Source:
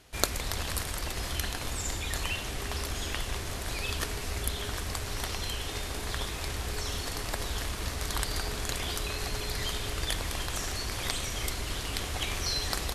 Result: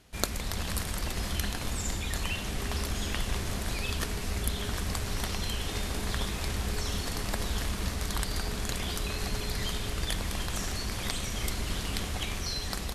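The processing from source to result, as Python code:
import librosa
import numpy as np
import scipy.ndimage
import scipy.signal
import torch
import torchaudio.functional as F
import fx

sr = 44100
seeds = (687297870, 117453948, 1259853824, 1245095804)

y = fx.peak_eq(x, sr, hz=200.0, db=9.0, octaves=0.49)
y = fx.rider(y, sr, range_db=10, speed_s=0.5)
y = fx.low_shelf(y, sr, hz=140.0, db=3.5)
y = y * librosa.db_to_amplitude(-1.0)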